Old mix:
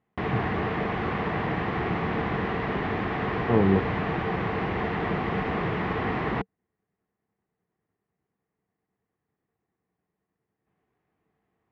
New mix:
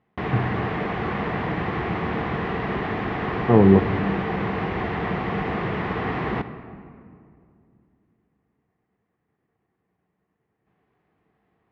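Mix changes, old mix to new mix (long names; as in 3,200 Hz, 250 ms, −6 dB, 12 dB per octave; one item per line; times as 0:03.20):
speech +6.0 dB
reverb: on, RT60 2.4 s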